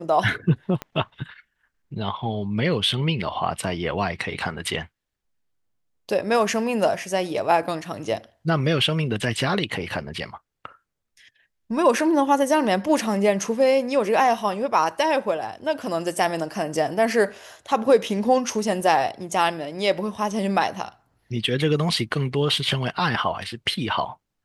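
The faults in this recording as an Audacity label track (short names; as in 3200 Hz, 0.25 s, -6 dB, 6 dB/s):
0.820000	0.820000	pop -16 dBFS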